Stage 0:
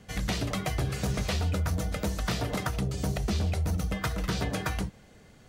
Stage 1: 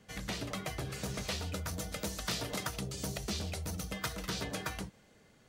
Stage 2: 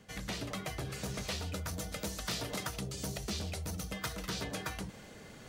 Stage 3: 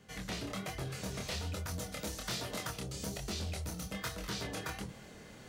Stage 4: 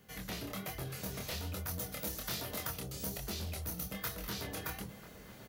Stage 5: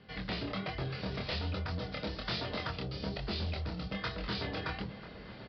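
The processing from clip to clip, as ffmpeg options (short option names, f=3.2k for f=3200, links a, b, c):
-filter_complex "[0:a]acrossover=split=3000[a][b];[b]dynaudnorm=f=210:g=13:m=7dB[c];[a][c]amix=inputs=2:normalize=0,lowshelf=f=120:g=-9.5,bandreject=f=730:w=24,volume=-6dB"
-af "areverse,acompressor=mode=upward:threshold=-39dB:ratio=2.5,areverse,asoftclip=type=tanh:threshold=-26dB"
-af "flanger=delay=22.5:depth=5.9:speed=1.2,volume=2dB"
-filter_complex "[0:a]aexciter=amount=2.3:drive=9.8:freq=11k,asplit=2[a][b];[b]adelay=991.3,volume=-13dB,highshelf=f=4k:g=-22.3[c];[a][c]amix=inputs=2:normalize=0,volume=-2dB"
-af "aresample=11025,aresample=44100,volume=5dB"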